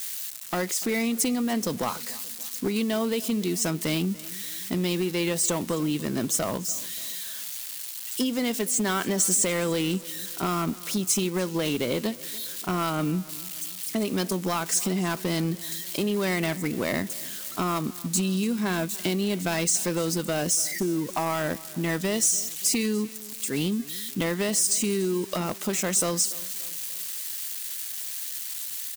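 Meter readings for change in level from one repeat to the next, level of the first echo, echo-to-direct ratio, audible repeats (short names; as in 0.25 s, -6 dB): -6.0 dB, -20.5 dB, -19.5 dB, 3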